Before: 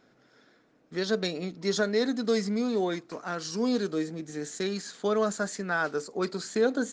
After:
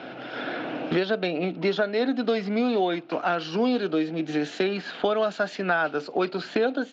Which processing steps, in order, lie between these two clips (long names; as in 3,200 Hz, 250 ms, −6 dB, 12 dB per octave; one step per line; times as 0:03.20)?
automatic gain control gain up to 11 dB
loudspeaker in its box 190–3,400 Hz, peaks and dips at 210 Hz −8 dB, 430 Hz −7 dB, 720 Hz +4 dB, 1,100 Hz −6 dB, 1,900 Hz −7 dB, 2,800 Hz +7 dB
multiband upward and downward compressor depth 100%
level −3.5 dB